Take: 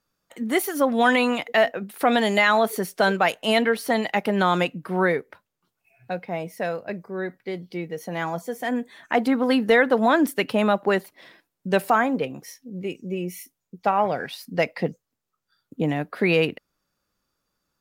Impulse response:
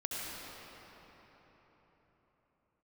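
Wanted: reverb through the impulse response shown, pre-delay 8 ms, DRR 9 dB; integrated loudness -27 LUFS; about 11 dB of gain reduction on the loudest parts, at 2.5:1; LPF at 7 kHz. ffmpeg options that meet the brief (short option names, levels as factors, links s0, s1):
-filter_complex "[0:a]lowpass=7000,acompressor=threshold=0.0282:ratio=2.5,asplit=2[s0][s1];[1:a]atrim=start_sample=2205,adelay=8[s2];[s1][s2]afir=irnorm=-1:irlink=0,volume=0.224[s3];[s0][s3]amix=inputs=2:normalize=0,volume=1.78"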